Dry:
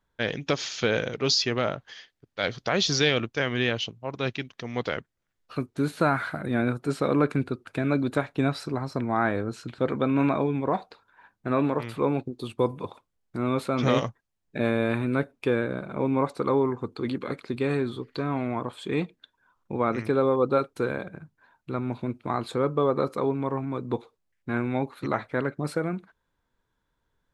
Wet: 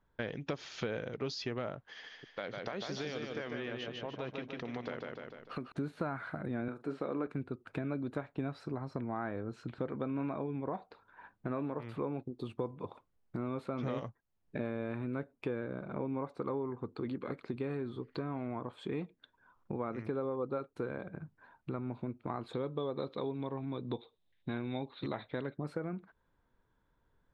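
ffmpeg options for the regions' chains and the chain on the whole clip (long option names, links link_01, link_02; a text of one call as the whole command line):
ffmpeg -i in.wav -filter_complex "[0:a]asettb=1/sr,asplit=3[link_01][link_02][link_03];[link_01]atrim=end=1.874[link_04];[link_02]atrim=start=1.87:end=5.72,asetpts=PTS-STARTPTS,afade=type=in:duration=0.004:curve=qsin,afade=type=out:start_time=3.846:duration=0.004:curve=qsin,equalizer=frequency=88:width=1.4:gain=-12.5,acompressor=threshold=-33dB:ratio=2:attack=3.2:release=140:knee=1:detection=peak,aecho=1:1:149|298|447|596|745|894:0.631|0.284|0.128|0.0575|0.0259|0.0116,atrim=end_sample=169785[link_05];[link_03]atrim=start=5.716[link_06];[link_04][link_05]acrossfade=duration=0.004:curve1=hsin:curve2=qsin[link_07];[link_07][link_06]acrossfade=duration=0.004:curve1=qsin:curve2=hsin,asettb=1/sr,asplit=3[link_08][link_09][link_10];[link_08]atrim=end=6.684[link_11];[link_09]atrim=start=6.68:end=7.27,asetpts=PTS-STARTPTS,afade=type=in:duration=0.004:curve=qsin,afade=type=out:start_time=0.586:duration=0.004:curve=qsin,highpass=210,acrossover=split=4200[link_12][link_13];[link_13]acompressor=threshold=-51dB:ratio=4:attack=1:release=60[link_14];[link_12][link_14]amix=inputs=2:normalize=0,asplit=2[link_15][link_16];[link_16]adelay=44,volume=-13dB[link_17];[link_15][link_17]amix=inputs=2:normalize=0,atrim=end_sample=26019[link_18];[link_10]atrim=start=7.266[link_19];[link_11][link_18]acrossfade=duration=0.004:curve1=hsin:curve2=qsin[link_20];[link_20][link_19]acrossfade=duration=0.004:curve1=qsin:curve2=hsin,asettb=1/sr,asplit=3[link_21][link_22][link_23];[link_21]atrim=end=22.534[link_24];[link_22]atrim=start=22.53:end=25.57,asetpts=PTS-STARTPTS,afade=type=in:duration=0.004:curve=qsin,afade=type=out:start_time=3.036:duration=0.004:curve=qsin,lowpass=frequency=3700:width_type=q:width=11,equalizer=frequency=1300:width=3.1:gain=-5.5[link_25];[link_23]atrim=start=25.566[link_26];[link_24][link_25]acrossfade=duration=0.004:curve1=hsin:curve2=qsin[link_27];[link_27][link_26]acrossfade=duration=0.004:curve1=qsin:curve2=hsin,lowpass=frequency=1500:poles=1,acompressor=threshold=-41dB:ratio=3,volume=2.5dB" out.wav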